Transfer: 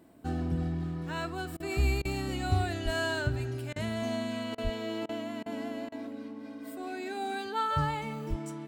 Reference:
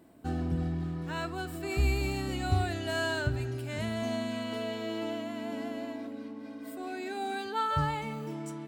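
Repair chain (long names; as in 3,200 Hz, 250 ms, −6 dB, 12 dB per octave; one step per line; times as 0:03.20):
0:02.84–0:02.96: high-pass filter 140 Hz 24 dB per octave
0:04.63–0:04.75: high-pass filter 140 Hz 24 dB per octave
0:08.29–0:08.41: high-pass filter 140 Hz 24 dB per octave
repair the gap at 0:01.57/0:02.02/0:03.73/0:04.55/0:05.06/0:05.43/0:05.89, 29 ms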